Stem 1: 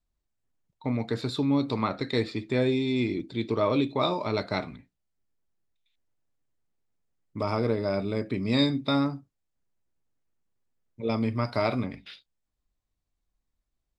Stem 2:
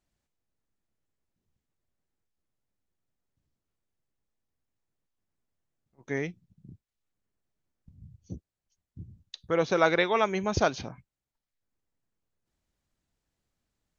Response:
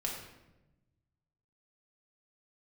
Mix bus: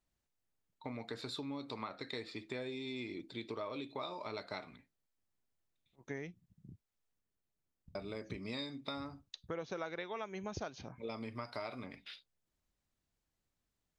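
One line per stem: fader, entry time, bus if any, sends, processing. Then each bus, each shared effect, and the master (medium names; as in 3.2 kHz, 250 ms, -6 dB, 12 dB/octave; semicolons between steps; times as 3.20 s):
-4.5 dB, 0.00 s, muted 7.21–7.95 s, no send, bass shelf 330 Hz -12 dB
-5.5 dB, 0.00 s, no send, none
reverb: none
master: compression 6:1, threshold -39 dBFS, peak gain reduction 15.5 dB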